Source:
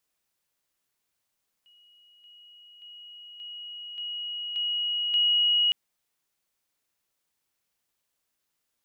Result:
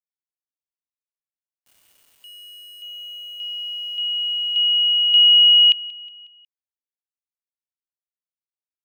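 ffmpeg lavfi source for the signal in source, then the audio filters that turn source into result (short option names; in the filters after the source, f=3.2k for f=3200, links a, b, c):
-f lavfi -i "aevalsrc='pow(10,(-55.5+6*floor(t/0.58))/20)*sin(2*PI*2900*t)':d=4.06:s=44100"
-af "highpass=f=2.8k:t=q:w=3.5,aeval=exprs='val(0)*gte(abs(val(0)),0.00596)':c=same,aecho=1:1:182|364|546|728:0.106|0.0508|0.0244|0.0117"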